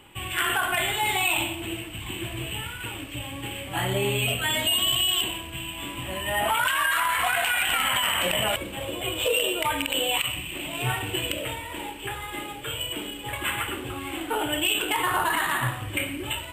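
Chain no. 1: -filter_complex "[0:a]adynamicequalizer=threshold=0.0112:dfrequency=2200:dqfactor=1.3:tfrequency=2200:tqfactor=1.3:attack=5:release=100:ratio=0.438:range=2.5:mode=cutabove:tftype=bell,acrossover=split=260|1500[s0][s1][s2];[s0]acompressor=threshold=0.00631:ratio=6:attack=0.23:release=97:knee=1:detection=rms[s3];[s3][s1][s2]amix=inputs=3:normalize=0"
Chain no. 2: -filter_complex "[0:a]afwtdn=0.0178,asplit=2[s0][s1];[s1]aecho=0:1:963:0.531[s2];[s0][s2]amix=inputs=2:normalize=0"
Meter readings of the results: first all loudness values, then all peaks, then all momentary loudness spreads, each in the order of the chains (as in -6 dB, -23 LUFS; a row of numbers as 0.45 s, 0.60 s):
-27.5 LUFS, -25.5 LUFS; -12.0 dBFS, -11.5 dBFS; 10 LU, 12 LU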